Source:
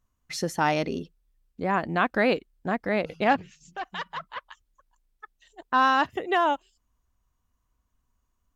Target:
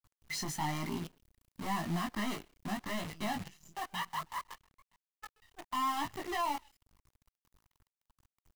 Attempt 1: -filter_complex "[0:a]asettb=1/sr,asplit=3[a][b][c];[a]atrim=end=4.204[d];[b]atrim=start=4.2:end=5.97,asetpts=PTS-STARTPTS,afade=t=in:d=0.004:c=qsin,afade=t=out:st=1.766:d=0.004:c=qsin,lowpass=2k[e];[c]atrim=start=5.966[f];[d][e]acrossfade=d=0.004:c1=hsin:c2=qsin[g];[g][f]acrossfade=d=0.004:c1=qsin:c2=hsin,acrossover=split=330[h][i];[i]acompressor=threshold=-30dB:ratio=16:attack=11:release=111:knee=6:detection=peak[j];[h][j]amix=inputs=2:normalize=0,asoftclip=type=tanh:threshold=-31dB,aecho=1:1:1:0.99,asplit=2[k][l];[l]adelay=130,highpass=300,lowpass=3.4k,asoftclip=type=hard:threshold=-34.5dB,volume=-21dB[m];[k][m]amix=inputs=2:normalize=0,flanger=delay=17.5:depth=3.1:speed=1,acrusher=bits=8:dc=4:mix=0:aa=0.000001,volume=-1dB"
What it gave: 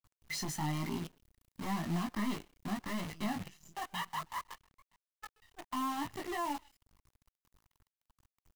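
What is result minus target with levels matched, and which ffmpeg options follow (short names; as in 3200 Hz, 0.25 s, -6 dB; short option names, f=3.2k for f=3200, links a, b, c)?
compressor: peak gain reduction +8.5 dB
-filter_complex "[0:a]asettb=1/sr,asplit=3[a][b][c];[a]atrim=end=4.204[d];[b]atrim=start=4.2:end=5.97,asetpts=PTS-STARTPTS,afade=t=in:d=0.004:c=qsin,afade=t=out:st=1.766:d=0.004:c=qsin,lowpass=2k[e];[c]atrim=start=5.966[f];[d][e]acrossfade=d=0.004:c1=hsin:c2=qsin[g];[g][f]acrossfade=d=0.004:c1=qsin:c2=hsin,acrossover=split=330[h][i];[i]acompressor=threshold=-20.5dB:ratio=16:attack=11:release=111:knee=6:detection=peak[j];[h][j]amix=inputs=2:normalize=0,asoftclip=type=tanh:threshold=-31dB,aecho=1:1:1:0.99,asplit=2[k][l];[l]adelay=130,highpass=300,lowpass=3.4k,asoftclip=type=hard:threshold=-34.5dB,volume=-21dB[m];[k][m]amix=inputs=2:normalize=0,flanger=delay=17.5:depth=3.1:speed=1,acrusher=bits=8:dc=4:mix=0:aa=0.000001,volume=-1dB"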